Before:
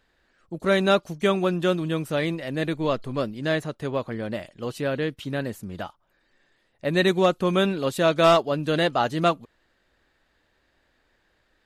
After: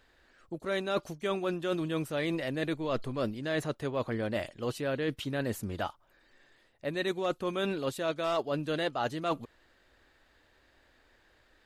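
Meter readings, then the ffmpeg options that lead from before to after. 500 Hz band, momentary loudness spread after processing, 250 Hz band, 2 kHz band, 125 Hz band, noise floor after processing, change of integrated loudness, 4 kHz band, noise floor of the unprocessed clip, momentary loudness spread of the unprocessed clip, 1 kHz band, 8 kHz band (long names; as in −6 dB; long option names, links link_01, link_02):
−9.0 dB, 5 LU, −8.0 dB, −8.5 dB, −9.0 dB, −66 dBFS, −9.0 dB, −9.0 dB, −69 dBFS, 13 LU, −10.0 dB, −6.0 dB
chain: -af "equalizer=frequency=180:width_type=o:width=0.38:gain=-7,areverse,acompressor=threshold=-31dB:ratio=8,areverse,volume=2.5dB"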